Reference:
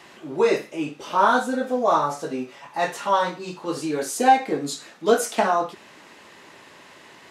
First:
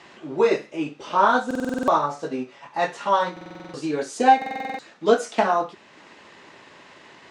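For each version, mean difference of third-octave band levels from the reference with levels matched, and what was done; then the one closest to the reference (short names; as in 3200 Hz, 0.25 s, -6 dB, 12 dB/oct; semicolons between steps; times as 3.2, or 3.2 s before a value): 3.5 dB: Bessel low-pass 5900 Hz, order 8; transient shaper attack +1 dB, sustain -3 dB; stuck buffer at 1.46/3.32/4.37, samples 2048, times 8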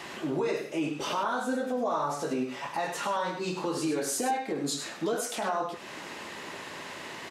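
8.5 dB: compressor 3:1, threshold -35 dBFS, peak gain reduction 17.5 dB; limiter -27.5 dBFS, peak gain reduction 9 dB; on a send: echo 0.101 s -8.5 dB; on the sum: gain +6 dB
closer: first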